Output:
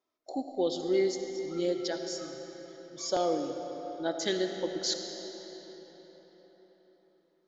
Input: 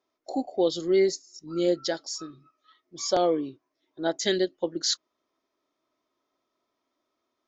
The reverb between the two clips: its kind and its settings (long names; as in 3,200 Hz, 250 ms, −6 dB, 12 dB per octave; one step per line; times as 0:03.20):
comb and all-pass reverb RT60 4.8 s, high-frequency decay 0.7×, pre-delay 30 ms, DRR 5 dB
level −5.5 dB